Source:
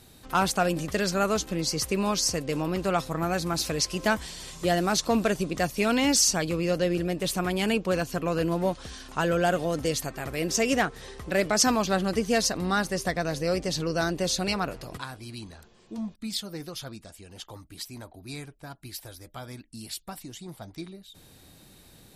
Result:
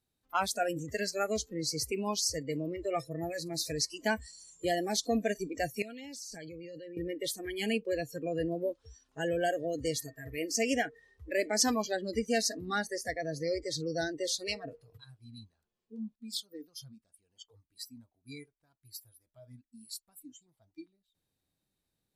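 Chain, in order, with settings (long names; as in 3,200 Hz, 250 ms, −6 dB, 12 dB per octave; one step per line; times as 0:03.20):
noise reduction from a noise print of the clip's start 26 dB
0:05.82–0:06.97: output level in coarse steps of 20 dB
level −5 dB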